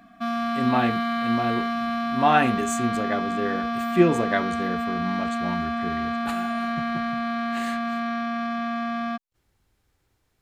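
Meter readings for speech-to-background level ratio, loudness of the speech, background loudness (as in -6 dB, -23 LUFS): 1.0 dB, -26.0 LUFS, -27.0 LUFS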